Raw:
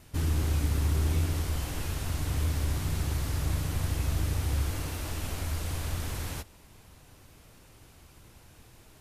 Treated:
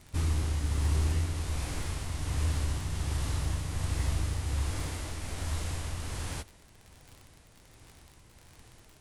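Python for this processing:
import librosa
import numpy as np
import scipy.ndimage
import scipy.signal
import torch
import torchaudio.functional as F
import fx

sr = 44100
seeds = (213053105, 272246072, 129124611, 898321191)

y = fx.formant_shift(x, sr, semitones=-4)
y = fx.dmg_crackle(y, sr, seeds[0], per_s=44.0, level_db=-39.0)
y = fx.tremolo_shape(y, sr, shape='triangle', hz=1.3, depth_pct=35)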